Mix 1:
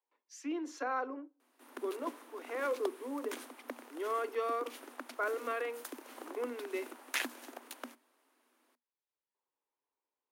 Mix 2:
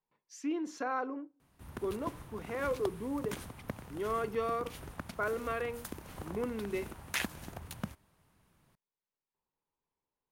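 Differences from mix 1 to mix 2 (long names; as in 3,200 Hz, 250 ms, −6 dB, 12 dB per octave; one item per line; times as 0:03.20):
speech: remove high-pass filter 300 Hz
master: remove Chebyshev high-pass filter 240 Hz, order 10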